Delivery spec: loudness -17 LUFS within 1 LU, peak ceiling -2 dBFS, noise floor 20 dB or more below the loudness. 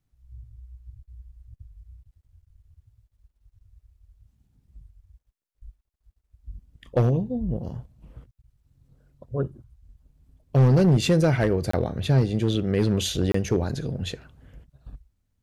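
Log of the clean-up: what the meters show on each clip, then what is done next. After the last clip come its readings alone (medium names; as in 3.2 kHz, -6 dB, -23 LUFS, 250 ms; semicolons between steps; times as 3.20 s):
clipped samples 0.6%; clipping level -13.5 dBFS; dropouts 2; longest dropout 24 ms; loudness -23.5 LUFS; peak level -13.5 dBFS; loudness target -17.0 LUFS
-> clip repair -13.5 dBFS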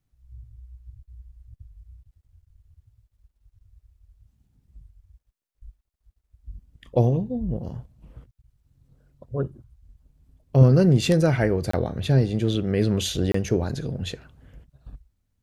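clipped samples 0.0%; dropouts 2; longest dropout 24 ms
-> interpolate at 11.71/13.32 s, 24 ms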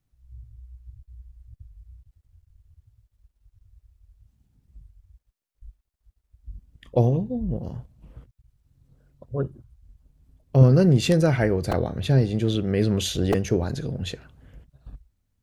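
dropouts 0; loudness -22.5 LUFS; peak level -4.5 dBFS; loudness target -17.0 LUFS
-> trim +5.5 dB; peak limiter -2 dBFS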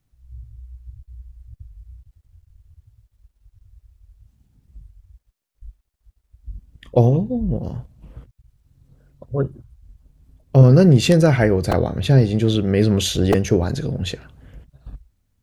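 loudness -17.5 LUFS; peak level -2.0 dBFS; noise floor -72 dBFS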